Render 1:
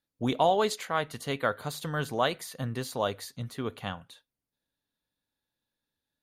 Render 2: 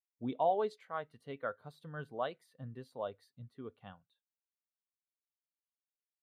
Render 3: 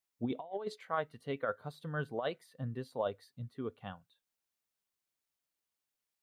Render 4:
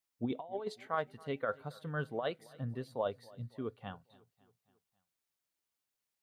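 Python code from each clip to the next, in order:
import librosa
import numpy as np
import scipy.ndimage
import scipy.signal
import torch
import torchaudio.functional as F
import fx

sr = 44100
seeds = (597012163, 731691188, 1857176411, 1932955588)

y1 = fx.bass_treble(x, sr, bass_db=-2, treble_db=-4)
y1 = fx.notch(y1, sr, hz=6800.0, q=9.0)
y1 = fx.spectral_expand(y1, sr, expansion=1.5)
y1 = y1 * librosa.db_to_amplitude(-7.0)
y2 = fx.over_compress(y1, sr, threshold_db=-37.0, ratio=-0.5)
y2 = y2 * librosa.db_to_amplitude(3.5)
y3 = fx.echo_feedback(y2, sr, ms=274, feedback_pct=55, wet_db=-23.0)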